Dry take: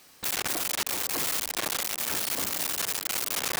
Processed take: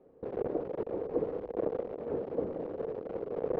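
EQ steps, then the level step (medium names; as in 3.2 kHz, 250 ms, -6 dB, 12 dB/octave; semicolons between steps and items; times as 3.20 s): resonant low-pass 470 Hz, resonance Q 4.9; distance through air 150 m; 0.0 dB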